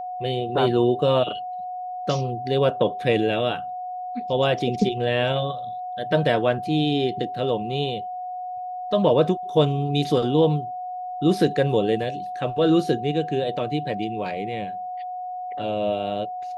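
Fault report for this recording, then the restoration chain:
whistle 730 Hz −29 dBFS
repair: notch filter 730 Hz, Q 30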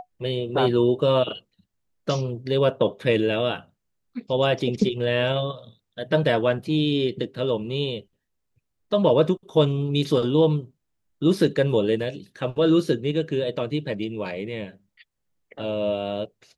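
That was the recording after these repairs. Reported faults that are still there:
none of them is left

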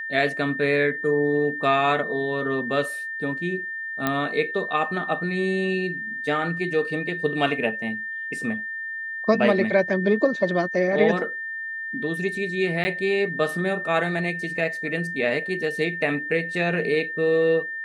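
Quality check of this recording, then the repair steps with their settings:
whistle 1,800 Hz −29 dBFS
0:04.07: click −9 dBFS
0:12.84–0:12.85: drop-out 10 ms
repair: click removal
notch filter 1,800 Hz, Q 30
repair the gap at 0:12.84, 10 ms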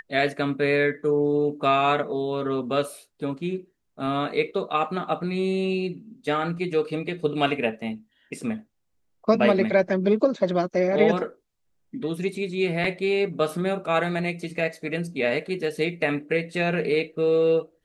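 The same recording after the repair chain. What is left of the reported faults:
none of them is left

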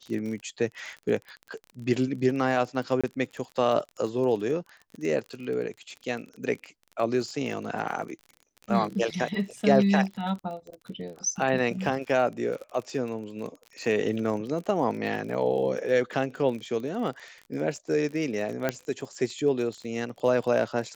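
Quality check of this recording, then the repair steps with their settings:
surface crackle 37 per second −35 dBFS
0:03.01–0:03.04: drop-out 26 ms
0:18.69: click −12 dBFS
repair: click removal
repair the gap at 0:03.01, 26 ms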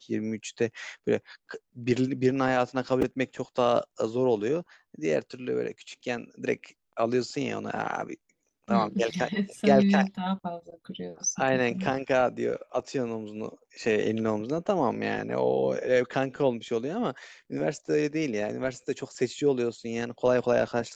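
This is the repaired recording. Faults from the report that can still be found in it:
none of them is left

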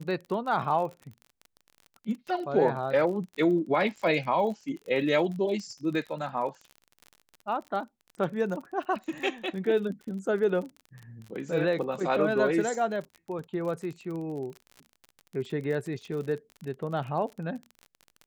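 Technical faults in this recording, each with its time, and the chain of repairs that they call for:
surface crackle 35 per second −36 dBFS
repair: click removal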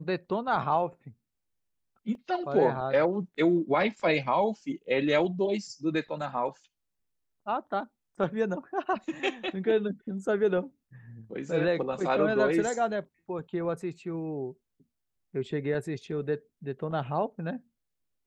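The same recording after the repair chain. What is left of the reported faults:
none of them is left

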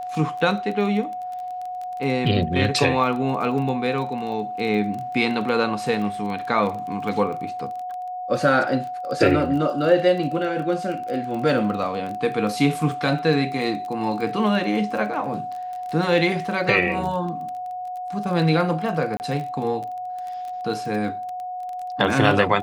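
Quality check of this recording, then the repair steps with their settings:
surface crackle 22 per second −29 dBFS
whistle 730 Hz −28 dBFS
0:19.17–0:19.20: drop-out 29 ms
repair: click removal
notch filter 730 Hz, Q 30
repair the gap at 0:19.17, 29 ms

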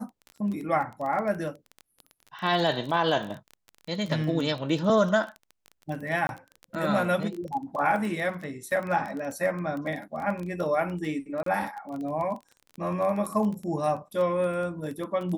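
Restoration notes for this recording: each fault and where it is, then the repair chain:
surface crackle 21 per second −32 dBFS
0:06.27–0:06.29: drop-out 21 ms
0:11.43–0:11.46: drop-out 33 ms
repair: click removal
repair the gap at 0:06.27, 21 ms
repair the gap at 0:11.43, 33 ms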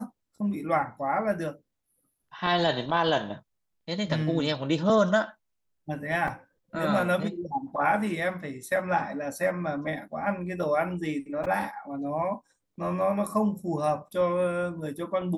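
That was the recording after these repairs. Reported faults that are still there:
none of them is left

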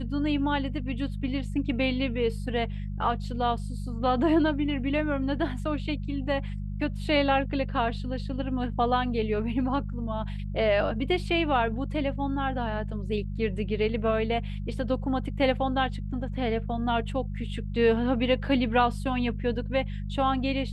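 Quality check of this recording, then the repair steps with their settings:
mains hum 50 Hz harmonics 4 −33 dBFS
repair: hum removal 50 Hz, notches 4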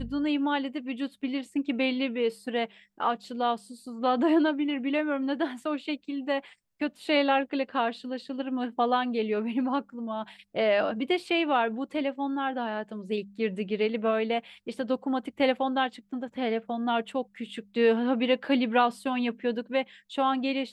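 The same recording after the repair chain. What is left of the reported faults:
none of them is left

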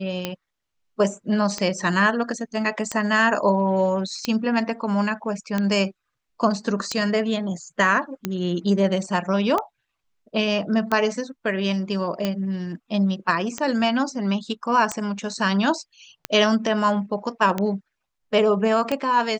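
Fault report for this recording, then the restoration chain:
scratch tick 45 rpm −10 dBFS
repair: click removal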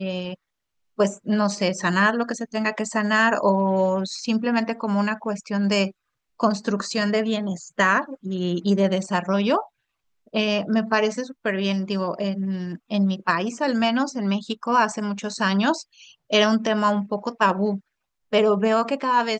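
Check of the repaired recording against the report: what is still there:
none of them is left

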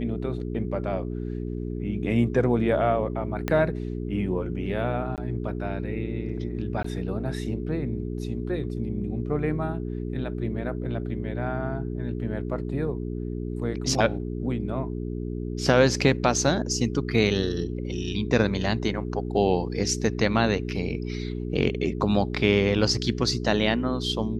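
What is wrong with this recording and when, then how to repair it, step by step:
mains hum 60 Hz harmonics 7 −31 dBFS
0:03.48: click −12 dBFS
0:05.16–0:05.18: drop-out 18 ms
0:06.83–0:06.84: drop-out 14 ms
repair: click removal
hum removal 60 Hz, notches 7
repair the gap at 0:05.16, 18 ms
repair the gap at 0:06.83, 14 ms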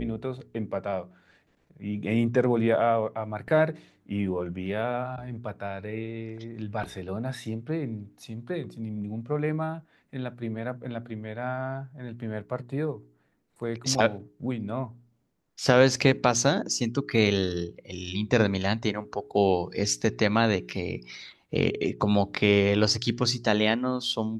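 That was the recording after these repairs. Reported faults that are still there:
0:03.48: click

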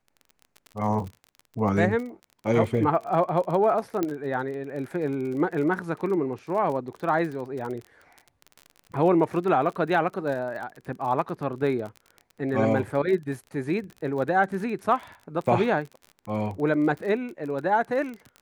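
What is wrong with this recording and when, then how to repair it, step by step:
surface crackle 32 per second −33 dBFS
0:04.03: click −13 dBFS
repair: click removal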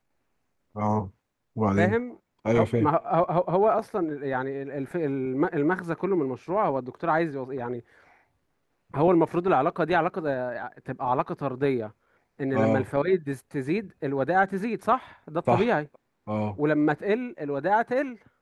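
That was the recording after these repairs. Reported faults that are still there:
none of them is left

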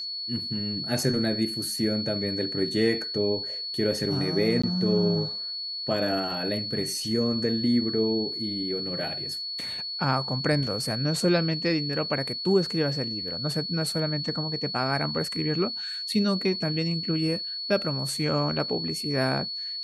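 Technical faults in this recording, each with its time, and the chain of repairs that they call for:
whistle 4,400 Hz −31 dBFS
0:04.62–0:04.63: drop-out 15 ms
0:09.61: drop-out 2.6 ms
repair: notch filter 4,400 Hz, Q 30
repair the gap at 0:04.62, 15 ms
repair the gap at 0:09.61, 2.6 ms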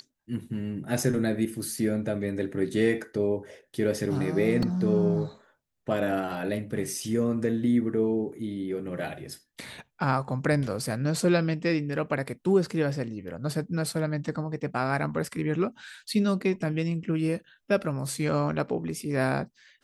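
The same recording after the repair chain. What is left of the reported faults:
none of them is left

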